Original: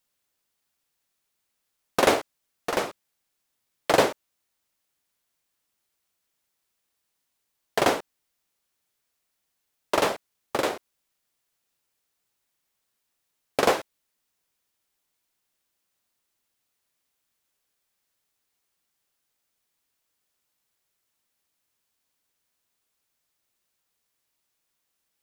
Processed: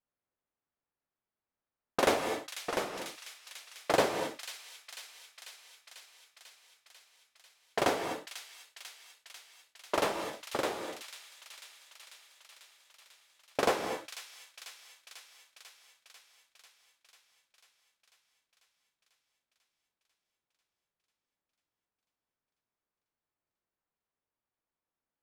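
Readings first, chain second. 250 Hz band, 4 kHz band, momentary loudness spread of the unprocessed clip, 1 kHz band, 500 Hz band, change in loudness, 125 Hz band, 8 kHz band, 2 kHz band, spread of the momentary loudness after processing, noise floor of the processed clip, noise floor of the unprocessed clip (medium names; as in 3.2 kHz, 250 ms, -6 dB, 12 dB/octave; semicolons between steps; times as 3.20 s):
-6.0 dB, -5.0 dB, 13 LU, -6.0 dB, -6.5 dB, -8.5 dB, -6.5 dB, -4.5 dB, -6.0 dB, 23 LU, under -85 dBFS, -79 dBFS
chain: level-controlled noise filter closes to 1.4 kHz, open at -24 dBFS; on a send: feedback echo behind a high-pass 494 ms, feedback 71%, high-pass 2.9 kHz, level -6 dB; on the sum: gated-style reverb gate 270 ms rising, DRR 7 dB; trim -7 dB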